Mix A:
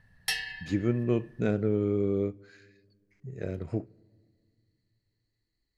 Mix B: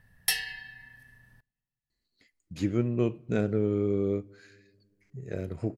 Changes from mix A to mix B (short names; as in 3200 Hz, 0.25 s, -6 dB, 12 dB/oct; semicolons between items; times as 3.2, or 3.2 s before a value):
speech: entry +1.90 s; master: remove air absorption 51 m